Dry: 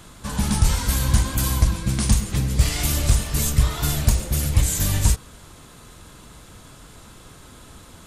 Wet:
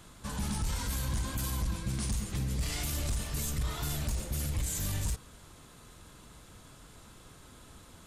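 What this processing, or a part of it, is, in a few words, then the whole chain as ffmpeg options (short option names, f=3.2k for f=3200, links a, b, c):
soft clipper into limiter: -af "asoftclip=type=tanh:threshold=-9.5dB,alimiter=limit=-17dB:level=0:latency=1:release=20,volume=-8.5dB"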